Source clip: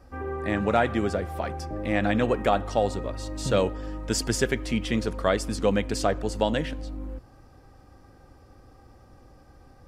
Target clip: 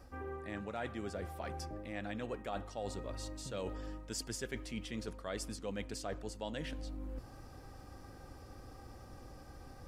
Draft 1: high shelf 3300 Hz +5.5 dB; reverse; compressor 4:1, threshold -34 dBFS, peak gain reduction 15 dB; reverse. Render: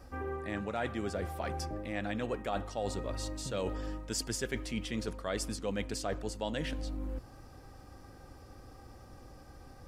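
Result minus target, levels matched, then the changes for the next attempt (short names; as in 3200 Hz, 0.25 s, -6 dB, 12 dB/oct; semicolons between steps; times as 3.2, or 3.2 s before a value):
compressor: peak gain reduction -5.5 dB
change: compressor 4:1, threshold -41.5 dBFS, peak gain reduction 21 dB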